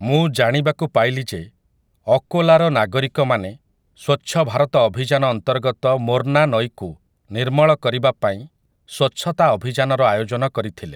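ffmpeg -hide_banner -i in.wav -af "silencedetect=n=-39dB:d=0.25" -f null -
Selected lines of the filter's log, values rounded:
silence_start: 1.48
silence_end: 2.07 | silence_duration: 0.58
silence_start: 3.56
silence_end: 3.99 | silence_duration: 0.43
silence_start: 6.94
silence_end: 7.30 | silence_duration: 0.37
silence_start: 8.47
silence_end: 8.89 | silence_duration: 0.42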